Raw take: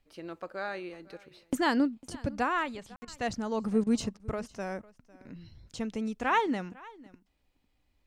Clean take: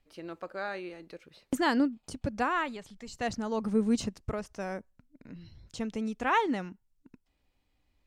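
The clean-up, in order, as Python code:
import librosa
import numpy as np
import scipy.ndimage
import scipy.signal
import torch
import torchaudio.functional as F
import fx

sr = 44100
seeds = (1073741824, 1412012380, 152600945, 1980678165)

y = fx.fix_ambience(x, sr, seeds[0], print_start_s=7.24, print_end_s=7.74, start_s=2.96, end_s=3.02)
y = fx.fix_interpolate(y, sr, at_s=(3.05, 3.84, 4.17), length_ms=26.0)
y = fx.fix_echo_inverse(y, sr, delay_ms=502, level_db=-22.0)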